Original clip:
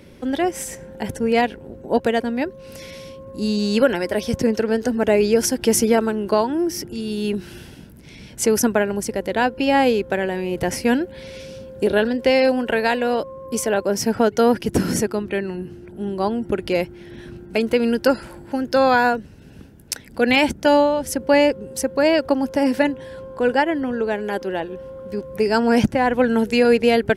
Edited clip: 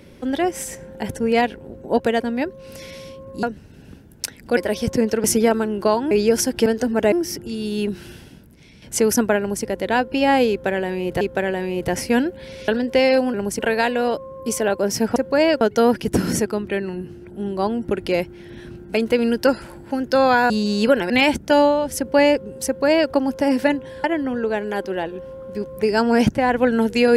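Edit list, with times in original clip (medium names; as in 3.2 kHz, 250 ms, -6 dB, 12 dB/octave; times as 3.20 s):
3.43–4.03 s: swap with 19.11–20.25 s
4.70–5.16 s: swap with 5.71–6.58 s
7.43–8.28 s: fade out, to -8.5 dB
8.85–9.10 s: copy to 12.65 s
9.96–10.67 s: loop, 2 plays
11.43–11.99 s: delete
21.81–22.26 s: copy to 14.22 s
23.19–23.61 s: delete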